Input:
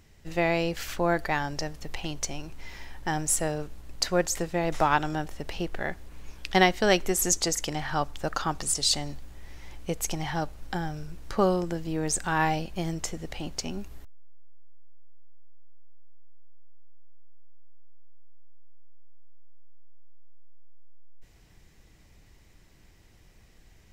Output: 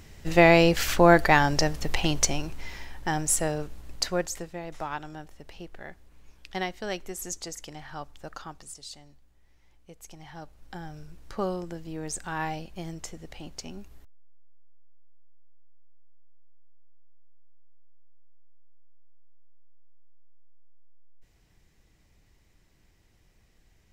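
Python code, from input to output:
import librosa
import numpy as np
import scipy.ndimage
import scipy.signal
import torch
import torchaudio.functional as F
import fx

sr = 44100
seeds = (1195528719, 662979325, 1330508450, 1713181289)

y = fx.gain(x, sr, db=fx.line((2.22, 8.5), (2.88, 1.0), (3.92, 1.0), (4.66, -11.0), (8.37, -11.0), (8.9, -19.0), (9.88, -19.0), (10.98, -6.5)))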